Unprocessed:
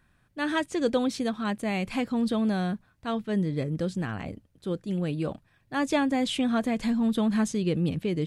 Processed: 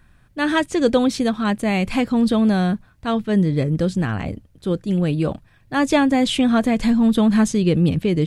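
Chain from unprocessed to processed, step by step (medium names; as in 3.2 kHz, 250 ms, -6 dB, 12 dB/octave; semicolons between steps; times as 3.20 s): bass shelf 80 Hz +9.5 dB; trim +8 dB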